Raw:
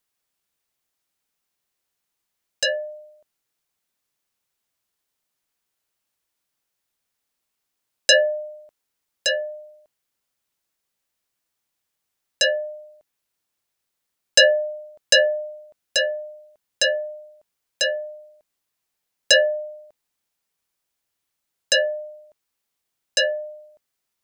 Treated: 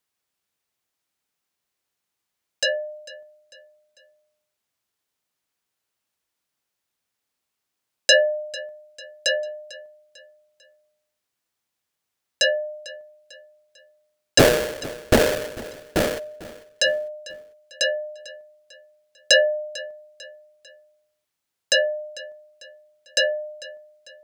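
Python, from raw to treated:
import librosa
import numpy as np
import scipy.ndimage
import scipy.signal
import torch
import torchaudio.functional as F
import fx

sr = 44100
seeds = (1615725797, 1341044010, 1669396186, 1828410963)

y = scipy.signal.sosfilt(scipy.signal.butter(2, 47.0, 'highpass', fs=sr, output='sos'), x)
y = fx.high_shelf(y, sr, hz=8100.0, db=-4.0)
y = fx.sample_hold(y, sr, seeds[0], rate_hz=1100.0, jitter_pct=20, at=(14.38, 16.18), fade=0.02)
y = fx.echo_feedback(y, sr, ms=447, feedback_pct=43, wet_db=-19)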